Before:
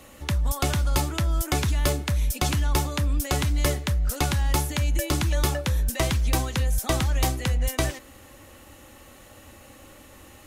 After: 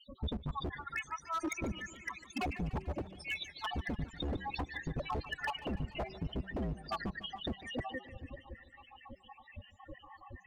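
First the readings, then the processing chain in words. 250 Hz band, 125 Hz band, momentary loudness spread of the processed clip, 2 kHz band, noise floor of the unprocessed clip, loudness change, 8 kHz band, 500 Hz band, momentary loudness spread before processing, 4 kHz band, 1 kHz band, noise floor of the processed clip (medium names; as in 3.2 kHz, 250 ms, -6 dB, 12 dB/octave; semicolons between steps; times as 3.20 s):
-9.5 dB, -17.5 dB, 16 LU, -8.5 dB, -49 dBFS, -14.5 dB, -24.0 dB, -12.5 dB, 3 LU, -12.5 dB, -9.0 dB, -61 dBFS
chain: random holes in the spectrogram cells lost 76%; low-pass 3.5 kHz 12 dB/octave; band-stop 1.5 kHz, Q 5.7; de-hum 190.6 Hz, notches 2; compression 6:1, threshold -34 dBFS, peak gain reduction 14 dB; loudest bins only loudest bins 8; wavefolder -37 dBFS; modulated delay 147 ms, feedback 66%, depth 113 cents, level -16 dB; trim +7.5 dB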